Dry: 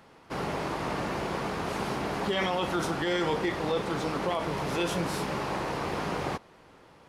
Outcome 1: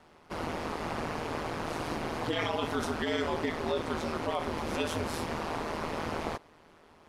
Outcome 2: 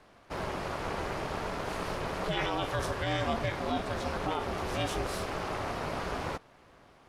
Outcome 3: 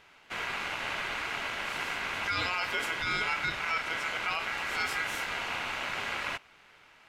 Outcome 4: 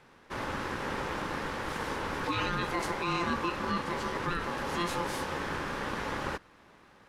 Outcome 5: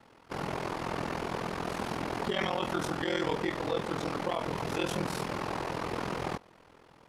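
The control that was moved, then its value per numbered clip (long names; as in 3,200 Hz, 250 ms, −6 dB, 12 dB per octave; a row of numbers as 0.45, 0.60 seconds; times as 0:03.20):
ring modulation, frequency: 79, 230, 1,800, 690, 21 Hertz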